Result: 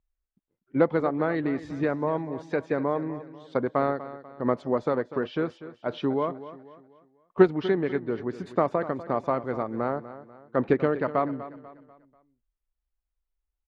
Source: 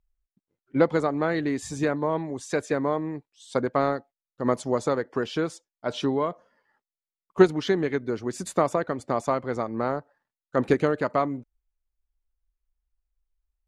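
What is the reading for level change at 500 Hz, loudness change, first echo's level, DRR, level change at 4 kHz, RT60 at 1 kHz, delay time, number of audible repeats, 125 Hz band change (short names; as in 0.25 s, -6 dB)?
-1.0 dB, -1.0 dB, -14.5 dB, none, -7.5 dB, none, 0.245 s, 3, -1.5 dB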